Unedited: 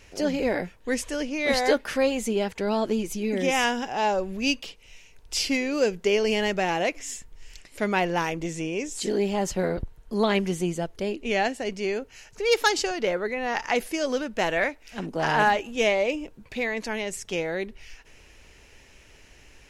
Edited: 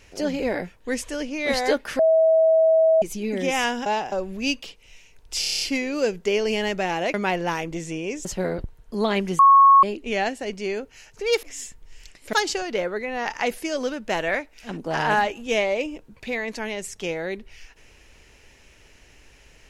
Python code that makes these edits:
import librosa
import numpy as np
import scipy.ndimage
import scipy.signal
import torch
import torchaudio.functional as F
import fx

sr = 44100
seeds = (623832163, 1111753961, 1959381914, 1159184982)

y = fx.edit(x, sr, fx.bleep(start_s=1.99, length_s=1.03, hz=645.0, db=-13.5),
    fx.reverse_span(start_s=3.86, length_s=0.26),
    fx.stutter(start_s=5.4, slice_s=0.03, count=8),
    fx.move(start_s=6.93, length_s=0.9, to_s=12.62),
    fx.cut(start_s=8.94, length_s=0.5),
    fx.bleep(start_s=10.58, length_s=0.44, hz=1100.0, db=-9.0), tone=tone)